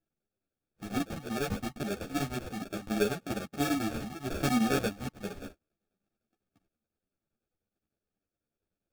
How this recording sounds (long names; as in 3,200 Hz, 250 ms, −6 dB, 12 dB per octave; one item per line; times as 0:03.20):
chopped level 10 Hz, depth 65%, duty 75%
aliases and images of a low sample rate 1,000 Hz, jitter 0%
a shimmering, thickened sound